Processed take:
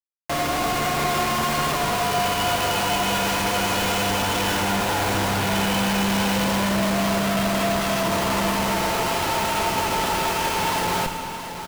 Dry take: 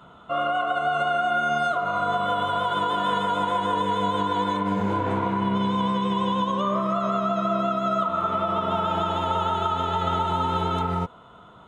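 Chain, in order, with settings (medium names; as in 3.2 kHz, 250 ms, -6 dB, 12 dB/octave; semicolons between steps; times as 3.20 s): formants flattened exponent 0.3; peaking EQ 970 Hz +6.5 dB 0.56 oct; in parallel at +1 dB: compression, threshold -28 dBFS, peak gain reduction 11.5 dB; on the sum: peak limiter -14.5 dBFS, peak gain reduction 9.5 dB; formant shift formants -3 st; Schmitt trigger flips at -26 dBFS; delay 674 ms -10 dB; on a send at -6.5 dB: reverberation RT60 2.0 s, pre-delay 28 ms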